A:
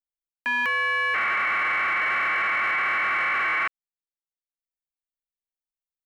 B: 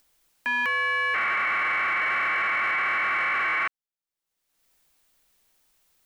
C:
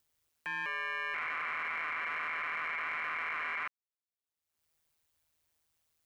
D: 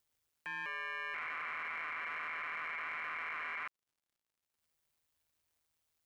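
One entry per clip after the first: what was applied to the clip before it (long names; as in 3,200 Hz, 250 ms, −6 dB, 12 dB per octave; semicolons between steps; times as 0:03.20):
upward compression, threshold −43 dBFS; level −1 dB
ring modulation 79 Hz; level −8.5 dB
surface crackle 110 per second −65 dBFS; level −4.5 dB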